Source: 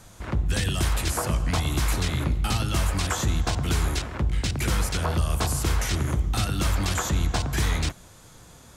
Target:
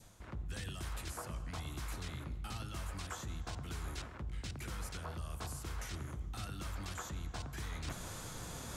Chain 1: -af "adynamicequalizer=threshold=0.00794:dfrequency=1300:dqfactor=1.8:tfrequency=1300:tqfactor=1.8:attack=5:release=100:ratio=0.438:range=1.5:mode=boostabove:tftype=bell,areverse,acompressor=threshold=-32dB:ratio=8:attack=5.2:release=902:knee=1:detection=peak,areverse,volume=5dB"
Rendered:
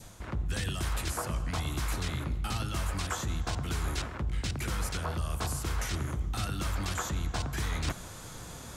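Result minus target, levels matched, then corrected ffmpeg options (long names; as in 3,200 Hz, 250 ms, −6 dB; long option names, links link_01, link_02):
downward compressor: peak gain reduction −10 dB
-af "adynamicequalizer=threshold=0.00794:dfrequency=1300:dqfactor=1.8:tfrequency=1300:tqfactor=1.8:attack=5:release=100:ratio=0.438:range=1.5:mode=boostabove:tftype=bell,areverse,acompressor=threshold=-43.5dB:ratio=8:attack=5.2:release=902:knee=1:detection=peak,areverse,volume=5dB"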